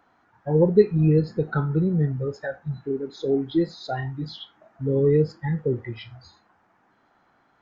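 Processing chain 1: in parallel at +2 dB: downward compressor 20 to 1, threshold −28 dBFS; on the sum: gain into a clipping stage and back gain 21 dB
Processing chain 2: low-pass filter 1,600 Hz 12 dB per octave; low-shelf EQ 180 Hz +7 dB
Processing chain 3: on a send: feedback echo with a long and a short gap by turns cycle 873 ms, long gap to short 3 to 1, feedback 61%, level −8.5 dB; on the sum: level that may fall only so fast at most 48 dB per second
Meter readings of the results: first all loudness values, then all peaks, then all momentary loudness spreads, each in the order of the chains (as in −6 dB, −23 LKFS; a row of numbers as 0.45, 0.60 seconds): −26.5, −21.5, −22.0 LKFS; −21.0, −4.0, −4.0 dBFS; 10, 14, 13 LU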